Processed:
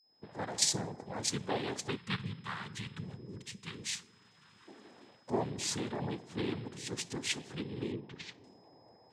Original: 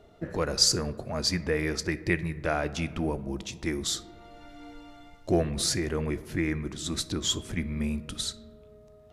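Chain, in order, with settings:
fade in at the beginning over 0.57 s
0:01.96–0:04.67: gain on a spectral selection 220–1,200 Hz −18 dB
cochlear-implant simulation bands 6
steady tone 5,100 Hz −61 dBFS
0:07.92–0:08.44: high-frequency loss of the air 220 metres
level −7 dB

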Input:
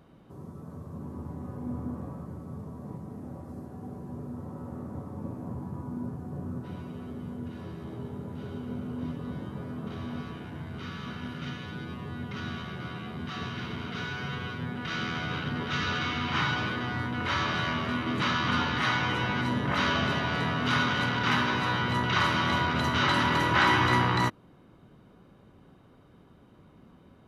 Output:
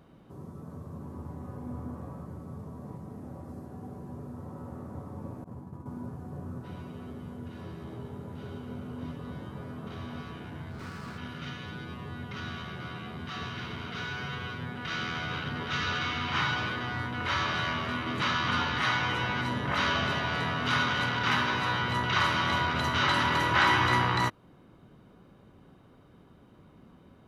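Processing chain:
0:05.44–0:05.86: downward expander −30 dBFS
dynamic equaliser 230 Hz, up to −5 dB, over −41 dBFS, Q 0.75
0:10.71–0:11.18: windowed peak hold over 9 samples

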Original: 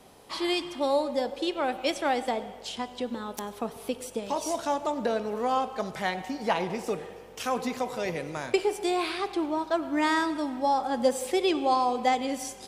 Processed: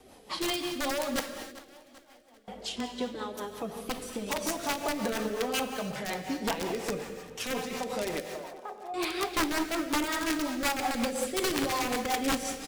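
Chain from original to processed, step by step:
brickwall limiter −21.5 dBFS, peak gain reduction 10 dB
flanger 0.74 Hz, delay 2.4 ms, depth 5.9 ms, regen −19%
wrap-around overflow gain 26 dB
0:01.20–0:02.48: gate with flip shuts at −33 dBFS, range −30 dB
0:08.20–0:08.94: flat-topped band-pass 770 Hz, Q 1.6
repeating echo 394 ms, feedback 48%, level −19.5 dB
reverb whose tail is shaped and stops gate 340 ms flat, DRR 6 dB
rotating-speaker cabinet horn 5.5 Hz
level +5 dB

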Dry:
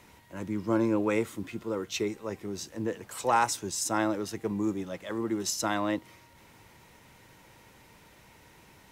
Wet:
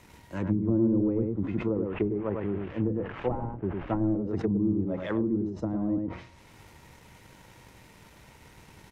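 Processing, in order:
0:01.74–0:04.15: variable-slope delta modulation 16 kbit/s
single-tap delay 102 ms −4.5 dB
leveller curve on the samples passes 1
low-shelf EQ 160 Hz +6.5 dB
treble cut that deepens with the level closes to 300 Hz, closed at −21.5 dBFS
level that may fall only so fast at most 97 dB per second

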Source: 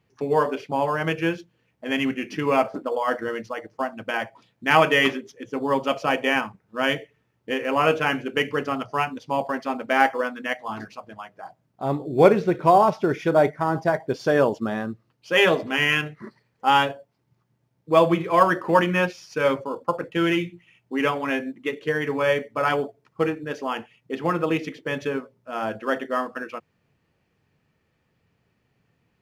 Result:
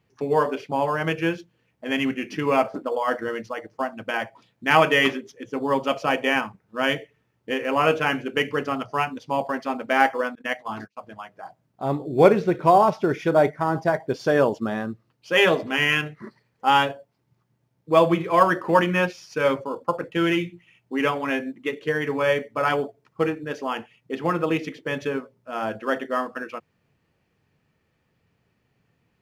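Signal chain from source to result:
0:10.35–0:10.97: noise gate −34 dBFS, range −32 dB

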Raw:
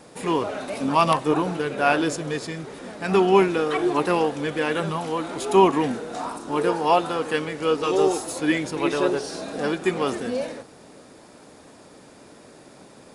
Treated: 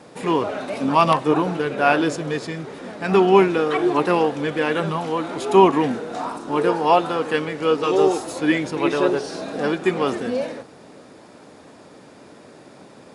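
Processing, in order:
high-pass filter 78 Hz
high-shelf EQ 7,400 Hz −11.5 dB
level +3 dB

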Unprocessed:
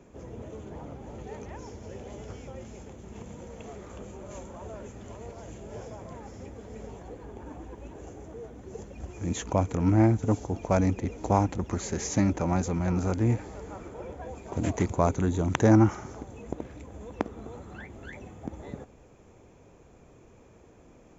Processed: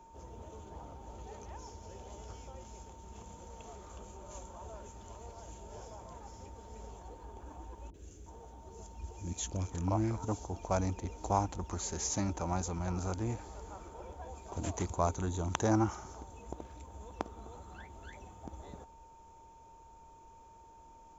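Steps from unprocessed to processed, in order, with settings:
octave-band graphic EQ 125/250/500/2,000 Hz −11/−9/−7/−11 dB
steady tone 910 Hz −55 dBFS
0:07.90–0:10.25: three-band delay without the direct sound lows, highs, mids 40/360 ms, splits 460/1,600 Hz

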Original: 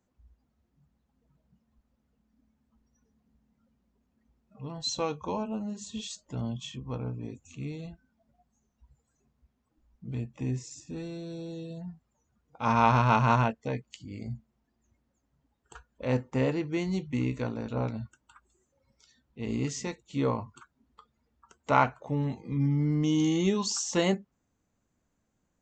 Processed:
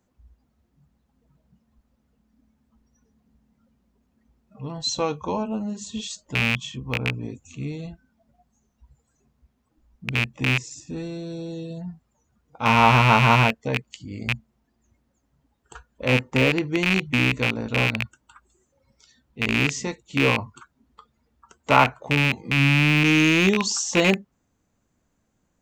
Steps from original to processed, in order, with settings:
loose part that buzzes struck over −32 dBFS, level −15 dBFS
level +6 dB

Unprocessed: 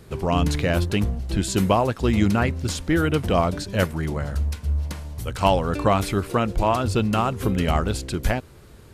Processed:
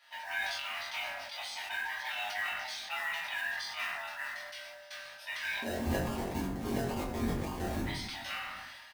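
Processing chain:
neighbouring bands swapped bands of 500 Hz
high-pass filter 1,500 Hz 24 dB per octave
downward compressor, threshold −33 dBFS, peak gain reduction 10 dB
Savitzky-Golay smoothing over 15 samples
0:05.62–0:07.85: sample-and-hold swept by an LFO 31×, swing 60% 3.6 Hz
noise that follows the level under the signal 18 dB
double-tracking delay 22 ms −5 dB
convolution reverb RT60 0.80 s, pre-delay 6 ms, DRR −6.5 dB
level that may fall only so fast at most 30 dB per second
level −7.5 dB

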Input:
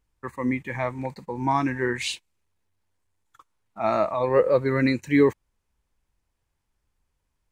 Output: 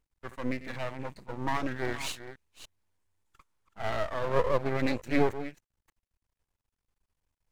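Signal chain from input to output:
delay that plays each chunk backwards 295 ms, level −12.5 dB
half-wave rectification
level −3 dB

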